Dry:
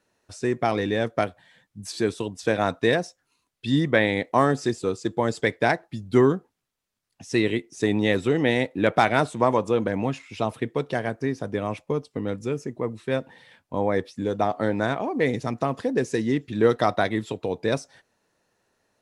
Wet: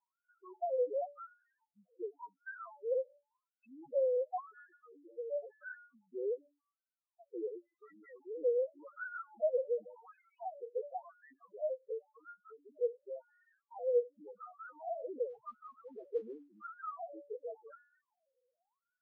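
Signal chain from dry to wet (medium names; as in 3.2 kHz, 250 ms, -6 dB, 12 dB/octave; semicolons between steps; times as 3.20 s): high-pass 180 Hz 6 dB/octave; de-hum 287.9 Hz, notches 7; in parallel at +1 dB: peak limiter -18 dBFS, peak gain reduction 12.5 dB; 4.40–5.41 s: on the sum: compressor with a negative ratio -27 dBFS, ratio -1; saturation -13 dBFS, distortion -14 dB; wah-wah 0.91 Hz 490–1500 Hz, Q 9.1; loudest bins only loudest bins 2; 15.29–16.65 s: modulation noise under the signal 25 dB; tape spacing loss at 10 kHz 39 dB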